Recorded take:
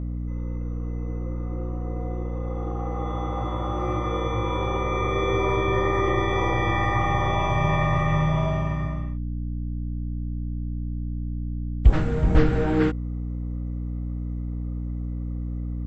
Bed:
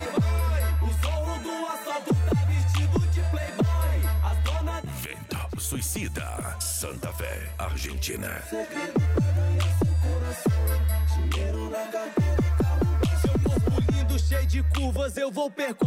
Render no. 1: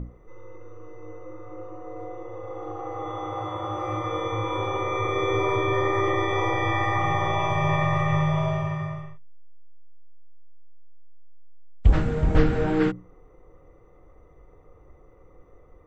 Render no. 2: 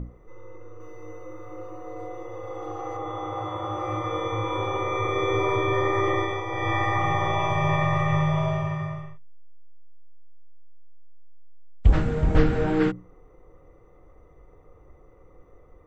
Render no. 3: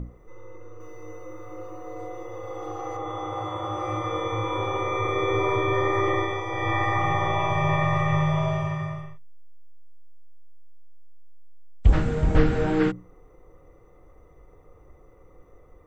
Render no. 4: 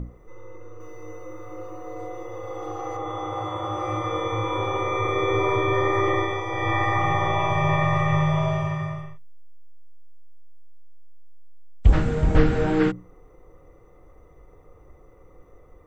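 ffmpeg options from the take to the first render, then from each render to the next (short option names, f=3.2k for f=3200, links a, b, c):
-af "bandreject=f=60:t=h:w=6,bandreject=f=120:t=h:w=6,bandreject=f=180:t=h:w=6,bandreject=f=240:t=h:w=6,bandreject=f=300:t=h:w=6,bandreject=f=360:t=h:w=6"
-filter_complex "[0:a]asettb=1/sr,asplit=3[a][b][c];[a]atrim=end=0.804[d];[b]atrim=start=0.8:end=2.97,asetpts=PTS-STARTPTS,afade=t=in:d=0.004:c=qsin,afade=t=out:st=2.166:d=0.004:c=qsin,highshelf=f=2.9k:g=10.5[e];[c]atrim=start=2.966[f];[d][e]acrossfade=d=0.004:c1=hsin:c2=qsin[g];[g][f]acrossfade=d=0.004:c1=qsin:c2=hsin,asplit=3[h][i][j];[h]atrim=end=6.44,asetpts=PTS-STARTPTS,afade=t=out:st=6.17:d=0.27:silence=0.398107[k];[i]atrim=start=6.44:end=6.46,asetpts=PTS-STARTPTS,volume=-8dB[l];[j]atrim=start=6.46,asetpts=PTS-STARTPTS,afade=t=in:d=0.27:silence=0.398107[m];[k][l][m]concat=n=3:v=0:a=1"
-filter_complex "[0:a]highshelf=f=5k:g=7,acrossover=split=3200[a][b];[b]acompressor=threshold=-46dB:ratio=4:attack=1:release=60[c];[a][c]amix=inputs=2:normalize=0"
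-af "volume=1.5dB"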